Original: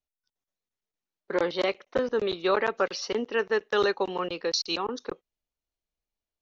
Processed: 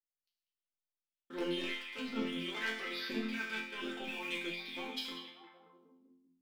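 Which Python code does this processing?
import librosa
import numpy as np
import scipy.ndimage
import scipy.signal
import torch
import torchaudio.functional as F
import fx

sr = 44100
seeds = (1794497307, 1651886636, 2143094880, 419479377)

y = fx.peak_eq(x, sr, hz=260.0, db=12.5, octaves=0.24)
y = fx.hum_notches(y, sr, base_hz=60, count=6)
y = fx.formant_shift(y, sr, semitones=-3)
y = fx.high_shelf_res(y, sr, hz=1700.0, db=12.5, q=1.5)
y = fx.over_compress(y, sr, threshold_db=-24.0, ratio=-1.0)
y = fx.leveller(y, sr, passes=3)
y = fx.transient(y, sr, attack_db=-5, sustain_db=4)
y = fx.harmonic_tremolo(y, sr, hz=1.3, depth_pct=70, crossover_hz=1100.0)
y = fx.resonator_bank(y, sr, root=53, chord='major', decay_s=0.6)
y = fx.echo_stepped(y, sr, ms=193, hz=2500.0, octaves=-0.7, feedback_pct=70, wet_db=-5.5)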